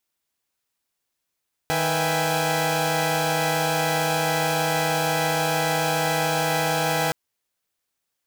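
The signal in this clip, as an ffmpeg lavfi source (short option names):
-f lavfi -i "aevalsrc='0.0562*((2*mod(155.56*t,1)-1)+(2*mod(493.88*t,1)-1)+(2*mod(659.26*t,1)-1)+(2*mod(783.99*t,1)-1)+(2*mod(830.61*t,1)-1))':d=5.42:s=44100"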